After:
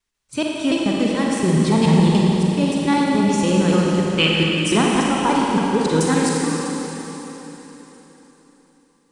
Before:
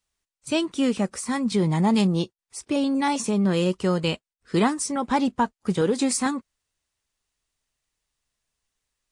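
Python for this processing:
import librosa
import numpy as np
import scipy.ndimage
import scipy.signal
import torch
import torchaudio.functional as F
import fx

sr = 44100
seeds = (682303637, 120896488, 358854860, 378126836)

y = fx.block_reorder(x, sr, ms=143.0, group=2)
y = fx.high_shelf(y, sr, hz=5600.0, db=-5.0)
y = fx.spec_box(y, sr, start_s=4.12, length_s=0.28, low_hz=1100.0, high_hz=3600.0, gain_db=10)
y = fx.peak_eq(y, sr, hz=660.0, db=-2.5, octaves=0.77)
y = fx.rev_schroeder(y, sr, rt60_s=3.9, comb_ms=38, drr_db=-3.0)
y = F.gain(torch.from_numpy(y), 2.5).numpy()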